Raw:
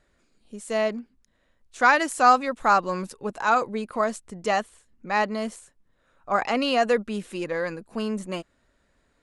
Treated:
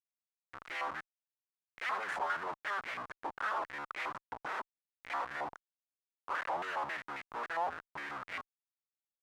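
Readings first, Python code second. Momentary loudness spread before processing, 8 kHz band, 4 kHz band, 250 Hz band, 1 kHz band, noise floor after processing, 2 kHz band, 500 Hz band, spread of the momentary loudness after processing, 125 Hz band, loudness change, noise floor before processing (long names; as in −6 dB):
14 LU, −21.0 dB, −14.5 dB, −25.0 dB, −14.0 dB, below −85 dBFS, −11.0 dB, −19.5 dB, 8 LU, −21.0 dB, −14.5 dB, −68 dBFS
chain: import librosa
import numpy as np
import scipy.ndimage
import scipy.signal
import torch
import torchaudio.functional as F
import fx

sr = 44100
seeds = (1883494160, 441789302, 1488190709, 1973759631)

y = fx.cycle_switch(x, sr, every=3, mode='inverted')
y = fx.schmitt(y, sr, flips_db=-32.5)
y = fx.filter_held_bandpass(y, sr, hz=7.4, low_hz=880.0, high_hz=2100.0)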